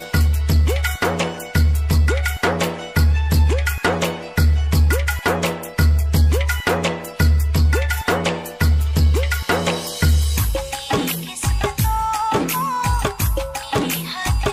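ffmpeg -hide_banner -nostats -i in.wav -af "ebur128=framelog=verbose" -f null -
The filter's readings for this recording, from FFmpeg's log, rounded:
Integrated loudness:
  I:         -19.3 LUFS
  Threshold: -29.3 LUFS
Loudness range:
  LRA:         2.3 LU
  Threshold: -39.1 LUFS
  LRA low:   -20.8 LUFS
  LRA high:  -18.4 LUFS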